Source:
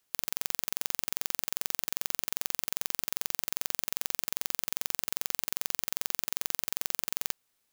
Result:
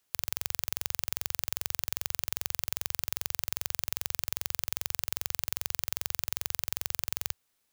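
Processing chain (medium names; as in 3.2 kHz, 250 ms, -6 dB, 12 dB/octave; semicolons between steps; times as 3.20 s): peaking EQ 84 Hz +5 dB 0.71 oct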